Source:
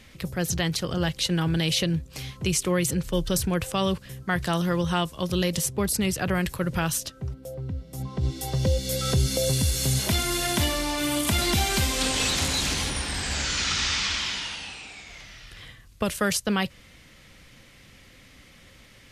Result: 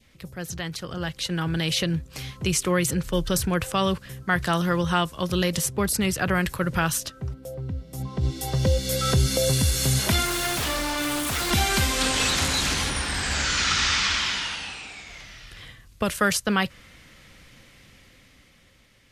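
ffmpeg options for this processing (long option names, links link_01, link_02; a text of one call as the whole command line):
ffmpeg -i in.wav -filter_complex "[0:a]asettb=1/sr,asplit=3[link_01][link_02][link_03];[link_01]atrim=end=10.254[link_04];[link_02]atrim=start=10.25:end=11.51,asetpts=PTS-STARTPTS,afade=type=in:duration=0.004:curve=qsin,afade=type=out:start_time=1.256:duration=0.004:curve=qsin,aeval=exprs='0.0668*(abs(mod(val(0)/0.0668+3,4)-2)-1)':channel_layout=same[link_05];[link_03]atrim=start=11.506[link_06];[link_04][link_05]acrossfade=duration=0.004:curve1=hsin:curve2=qsin[link_07];[link_07][link_06]acrossfade=duration=0.004:curve1=qsin:curve2=hsin,adynamicequalizer=threshold=0.00708:dfrequency=1400:dqfactor=1.3:tfrequency=1400:tqfactor=1.3:attack=5:release=100:ratio=0.375:range=2.5:mode=boostabove:tftype=bell,dynaudnorm=framelen=210:gausssize=13:maxgain=11.5dB,volume=-7.5dB" out.wav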